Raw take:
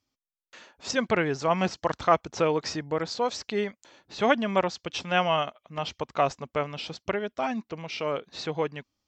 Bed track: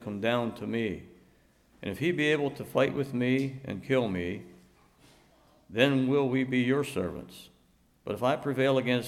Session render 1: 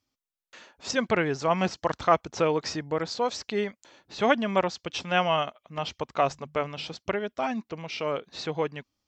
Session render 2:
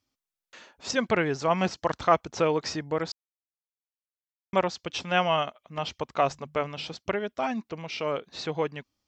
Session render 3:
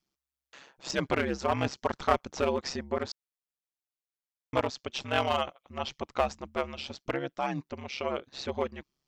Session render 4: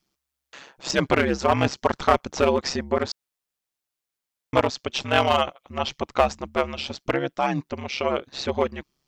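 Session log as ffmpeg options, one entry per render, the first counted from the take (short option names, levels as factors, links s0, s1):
-filter_complex "[0:a]asettb=1/sr,asplit=3[s0][s1][s2];[s0]atrim=end=6.164[s3];[s1]atrim=start=6.16:end=6.94,asetpts=PTS-STARTPTS,afade=t=in:d=0.004:c=qsin,afade=t=out:st=0.776:d=0.004:c=qsin,bandreject=f=50:t=h:w=6,bandreject=f=100:t=h:w=6,bandreject=f=150:t=h:w=6,bandreject=f=200:t=h:w=6[s4];[s2]atrim=start=6.936[s5];[s3][s4]acrossfade=d=0.004:c1=hsin:c2=qsin[s6];[s6][s5]acrossfade=d=0.004:c1=qsin:c2=hsin"
-filter_complex "[0:a]asplit=3[s0][s1][s2];[s0]atrim=end=3.12,asetpts=PTS-STARTPTS,afade=t=out:st=3.116:d=0.004:c=hsin[s3];[s1]atrim=start=3.12:end=4.53,asetpts=PTS-STARTPTS,volume=0[s4];[s2]atrim=start=4.53,asetpts=PTS-STARTPTS,afade=t=in:d=0.004:c=hsin[s5];[s3][s4][s5]concat=n=3:v=0:a=1"
-af "aeval=exprs='clip(val(0),-1,0.0891)':c=same,aeval=exprs='val(0)*sin(2*PI*68*n/s)':c=same"
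-af "volume=2.51,alimiter=limit=0.794:level=0:latency=1"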